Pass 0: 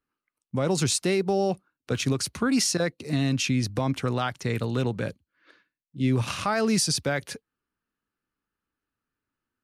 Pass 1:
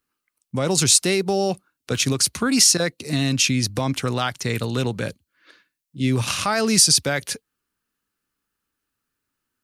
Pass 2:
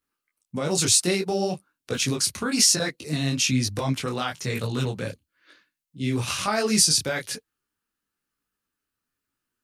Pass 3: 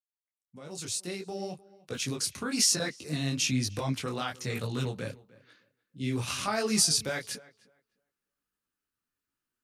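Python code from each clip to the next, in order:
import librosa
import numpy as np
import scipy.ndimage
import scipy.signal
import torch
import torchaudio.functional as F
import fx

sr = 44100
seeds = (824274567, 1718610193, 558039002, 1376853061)

y1 = fx.high_shelf(x, sr, hz=3100.0, db=10.5)
y1 = F.gain(torch.from_numpy(y1), 2.5).numpy()
y2 = fx.detune_double(y1, sr, cents=37)
y3 = fx.fade_in_head(y2, sr, length_s=2.81)
y3 = fx.echo_tape(y3, sr, ms=302, feedback_pct=20, wet_db=-20.0, lp_hz=2300.0, drive_db=6.0, wow_cents=16)
y3 = F.gain(torch.from_numpy(y3), -5.5).numpy()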